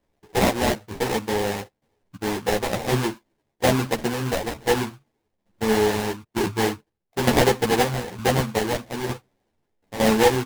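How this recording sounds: tremolo saw down 1.1 Hz, depth 75%; aliases and images of a low sample rate 1.3 kHz, jitter 20%; a shimmering, thickened sound

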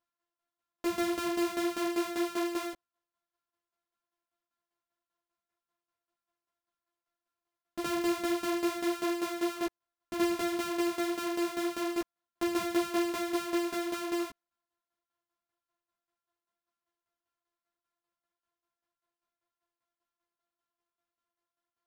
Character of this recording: a buzz of ramps at a fixed pitch in blocks of 128 samples; tremolo saw down 5.1 Hz, depth 75%; a shimmering, thickened sound

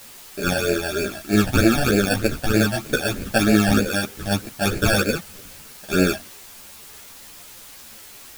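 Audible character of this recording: aliases and images of a low sample rate 1 kHz, jitter 0%; phasing stages 12, 3.2 Hz, lowest notch 380–1100 Hz; a quantiser's noise floor 8-bit, dither triangular; a shimmering, thickened sound

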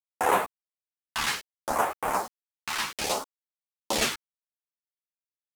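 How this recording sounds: phasing stages 2, 0.64 Hz, lowest notch 530–4600 Hz; a quantiser's noise floor 8-bit, dither none; a shimmering, thickened sound

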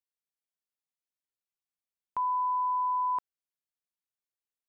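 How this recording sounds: noise floor -95 dBFS; spectral tilt -2.5 dB/octave

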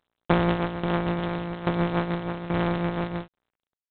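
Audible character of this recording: a buzz of ramps at a fixed pitch in blocks of 256 samples; tremolo saw down 1.2 Hz, depth 80%; aliases and images of a low sample rate 2.3 kHz, jitter 0%; G.726

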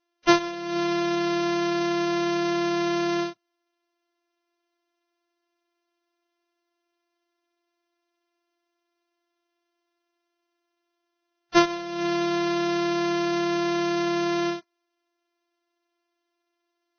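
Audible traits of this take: a buzz of ramps at a fixed pitch in blocks of 128 samples; Vorbis

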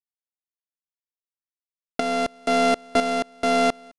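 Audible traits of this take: a buzz of ramps at a fixed pitch in blocks of 64 samples; tremolo saw up 1 Hz, depth 65%; a quantiser's noise floor 12-bit, dither none; IMA ADPCM

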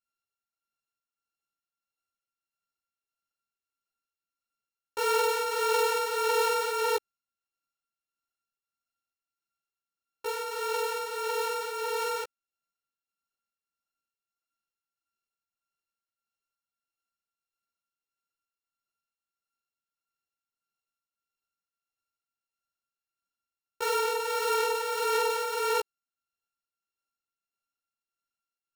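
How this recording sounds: a buzz of ramps at a fixed pitch in blocks of 32 samples; tremolo triangle 1.6 Hz, depth 50%; a shimmering, thickened sound

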